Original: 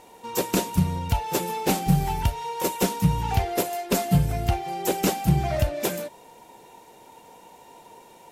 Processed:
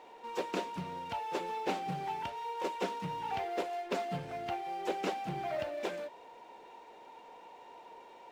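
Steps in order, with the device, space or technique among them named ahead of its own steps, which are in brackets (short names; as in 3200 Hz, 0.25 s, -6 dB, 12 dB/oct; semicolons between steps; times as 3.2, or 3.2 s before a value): phone line with mismatched companding (BPF 350–3200 Hz; G.711 law mismatch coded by mu); gain -8.5 dB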